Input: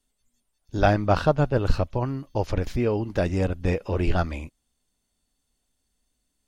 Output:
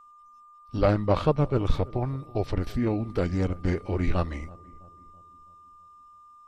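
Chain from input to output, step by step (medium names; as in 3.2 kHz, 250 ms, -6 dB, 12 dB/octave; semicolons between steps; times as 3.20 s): formant shift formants -3 st; whistle 1.2 kHz -48 dBFS; filtered feedback delay 329 ms, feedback 51%, low-pass 1.1 kHz, level -21 dB; trim -2 dB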